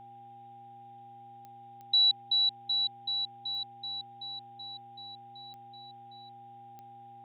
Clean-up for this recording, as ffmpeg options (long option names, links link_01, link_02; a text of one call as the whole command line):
ffmpeg -i in.wav -af "adeclick=threshold=4,bandreject=frequency=119.1:width_type=h:width=4,bandreject=frequency=238.2:width_type=h:width=4,bandreject=frequency=357.3:width_type=h:width=4,bandreject=frequency=800:width=30,agate=range=-21dB:threshold=-43dB" out.wav